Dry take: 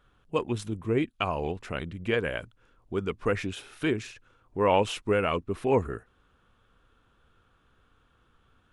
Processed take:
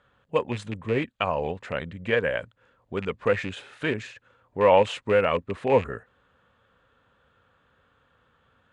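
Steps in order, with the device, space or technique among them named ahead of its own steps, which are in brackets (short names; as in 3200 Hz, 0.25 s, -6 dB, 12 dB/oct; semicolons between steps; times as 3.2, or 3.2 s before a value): car door speaker with a rattle (rattling part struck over -33 dBFS, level -27 dBFS; speaker cabinet 81–7600 Hz, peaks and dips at 340 Hz -7 dB, 540 Hz +8 dB, 920 Hz +3 dB, 1800 Hz +6 dB, 5600 Hz -8 dB); gain +1 dB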